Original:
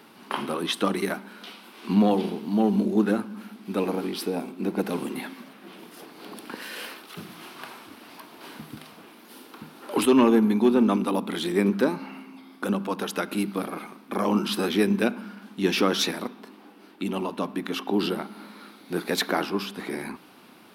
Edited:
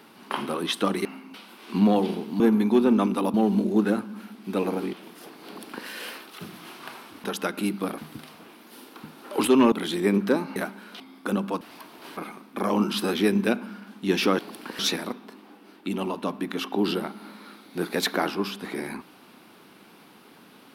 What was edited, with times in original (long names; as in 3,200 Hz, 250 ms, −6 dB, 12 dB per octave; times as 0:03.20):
0:01.05–0:01.49: swap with 0:12.08–0:12.37
0:04.14–0:05.69: remove
0:06.23–0:06.63: duplicate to 0:15.94
0:08.00–0:08.56: swap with 0:12.98–0:13.72
0:10.30–0:11.24: move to 0:02.55